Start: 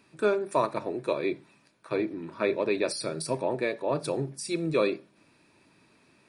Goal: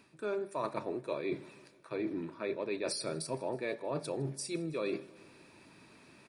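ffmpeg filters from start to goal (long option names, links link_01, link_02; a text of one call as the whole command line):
ffmpeg -i in.wav -af "areverse,acompressor=threshold=-37dB:ratio=6,areverse,aecho=1:1:159|318|477|636:0.0708|0.0418|0.0246|0.0145,volume=3.5dB" out.wav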